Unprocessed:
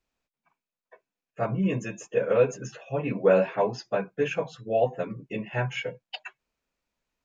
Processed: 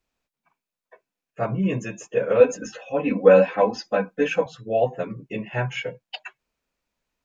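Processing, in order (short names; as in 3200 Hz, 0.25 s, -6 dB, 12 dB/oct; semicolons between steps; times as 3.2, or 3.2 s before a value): 2.4–4.46 comb 3.9 ms, depth 98%; gain +2.5 dB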